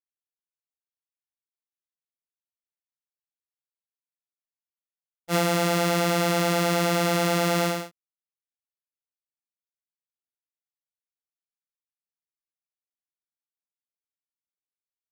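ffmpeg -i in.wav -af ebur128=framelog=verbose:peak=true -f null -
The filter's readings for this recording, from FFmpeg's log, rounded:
Integrated loudness:
  I:         -23.4 LUFS
  Threshold: -33.7 LUFS
Loudness range:
  LRA:        10.4 LU
  Threshold: -46.4 LUFS
  LRA low:   -34.1 LUFS
  LRA high:  -23.7 LUFS
True peak:
  Peak:      -11.3 dBFS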